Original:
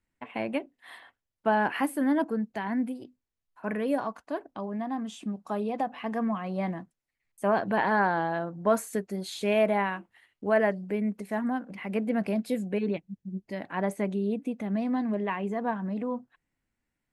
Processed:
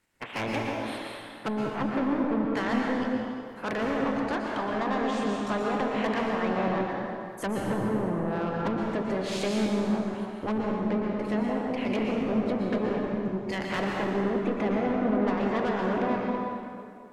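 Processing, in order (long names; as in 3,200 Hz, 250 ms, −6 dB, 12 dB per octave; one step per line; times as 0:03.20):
ceiling on every frequency bin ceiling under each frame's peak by 18 dB
treble cut that deepens with the level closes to 340 Hz, closed at −23 dBFS
0:10.53–0:12.57: parametric band 1,300 Hz −11.5 dB 1 octave
soft clipping −32 dBFS, distortion −9 dB
convolution reverb RT60 2.5 s, pre-delay 107 ms, DRR −1.5 dB
level +6 dB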